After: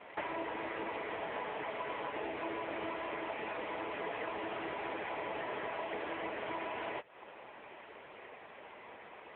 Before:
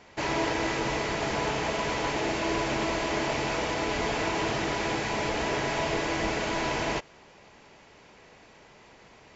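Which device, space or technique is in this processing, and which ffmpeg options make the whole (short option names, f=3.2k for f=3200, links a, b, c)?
voicemail: -filter_complex "[0:a]asettb=1/sr,asplit=3[a][b][c];[a]atrim=end=0.624[d];[b]atrim=start=0.62:end=1.62,asetpts=PTS-STARTPTS,afade=t=in:d=0.004:c=qsin,afade=t=out:st=0.996:d=0.004:c=qsin,lowpass=6.8k[e];[c]atrim=start=1.616[f];[d][e]acrossfade=d=0.004:c1=hsin:c2=qsin[g];[g][f]acrossfade=d=0.004:c1=qsin:c2=hsin,highpass=340,lowpass=2.8k,acompressor=threshold=-42dB:ratio=6,volume=7dB" -ar 8000 -c:a libopencore_amrnb -b:a 6700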